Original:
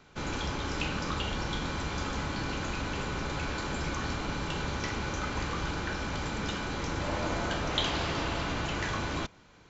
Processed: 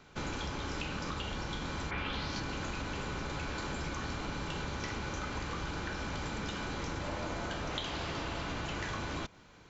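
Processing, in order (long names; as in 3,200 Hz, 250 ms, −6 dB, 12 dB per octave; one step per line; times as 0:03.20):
downward compressor, threshold −34 dBFS, peak gain reduction 10 dB
0:01.90–0:02.39: low-pass with resonance 2,000 Hz → 6,300 Hz, resonance Q 3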